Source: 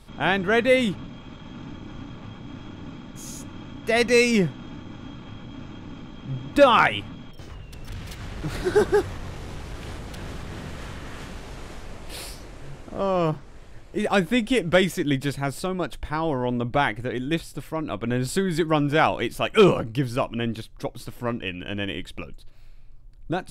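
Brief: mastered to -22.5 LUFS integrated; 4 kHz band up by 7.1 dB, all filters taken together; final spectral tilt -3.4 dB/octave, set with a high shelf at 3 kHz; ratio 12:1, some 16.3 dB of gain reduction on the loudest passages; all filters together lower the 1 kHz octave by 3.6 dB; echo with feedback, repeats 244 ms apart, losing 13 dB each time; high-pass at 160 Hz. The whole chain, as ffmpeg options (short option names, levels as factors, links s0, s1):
-af "highpass=160,equalizer=f=1000:t=o:g=-6.5,highshelf=f=3000:g=8.5,equalizer=f=4000:t=o:g=3.5,acompressor=threshold=0.0447:ratio=12,aecho=1:1:244|488|732:0.224|0.0493|0.0108,volume=3.55"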